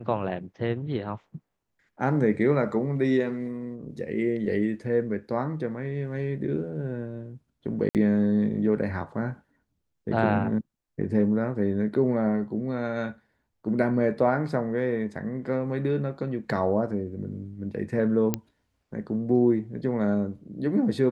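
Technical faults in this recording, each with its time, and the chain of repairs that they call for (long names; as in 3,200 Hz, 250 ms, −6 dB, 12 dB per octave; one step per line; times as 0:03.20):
0:07.89–0:07.95: drop-out 58 ms
0:18.34: click −10 dBFS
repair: click removal
repair the gap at 0:07.89, 58 ms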